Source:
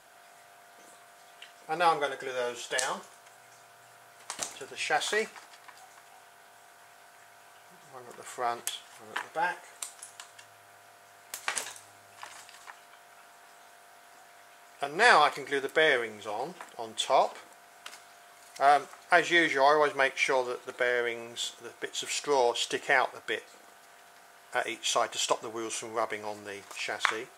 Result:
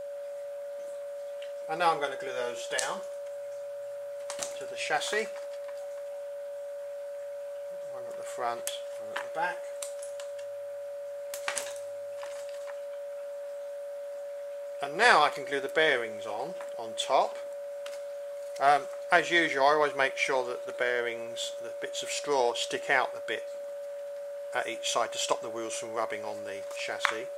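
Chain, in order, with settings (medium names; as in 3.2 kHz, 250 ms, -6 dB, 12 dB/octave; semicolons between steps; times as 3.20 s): Chebyshev shaper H 7 -32 dB, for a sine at -4 dBFS; whistle 570 Hz -36 dBFS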